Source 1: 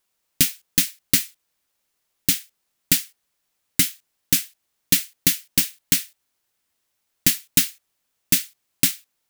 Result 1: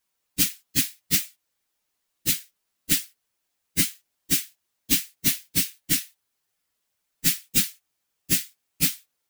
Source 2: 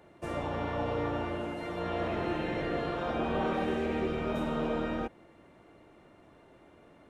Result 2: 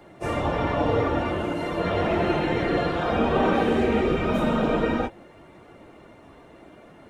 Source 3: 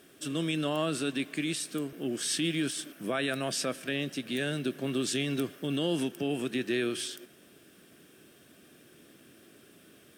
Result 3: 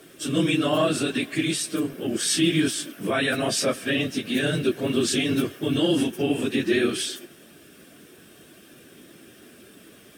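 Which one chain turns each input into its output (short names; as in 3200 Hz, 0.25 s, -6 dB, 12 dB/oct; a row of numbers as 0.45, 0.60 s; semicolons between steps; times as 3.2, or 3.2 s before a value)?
phase scrambler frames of 50 ms; match loudness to -24 LUFS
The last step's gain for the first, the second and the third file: -3.0, +9.0, +7.5 dB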